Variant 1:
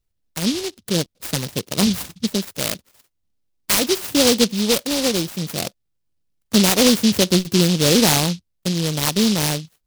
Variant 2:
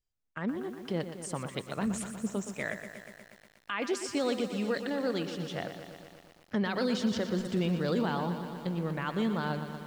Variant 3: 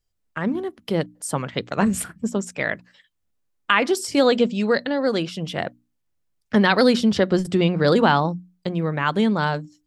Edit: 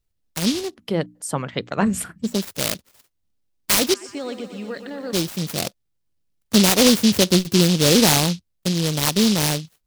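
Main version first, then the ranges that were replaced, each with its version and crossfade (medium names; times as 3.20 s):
1
0.65–2.32 s: from 3, crossfade 0.24 s
3.94–5.13 s: from 2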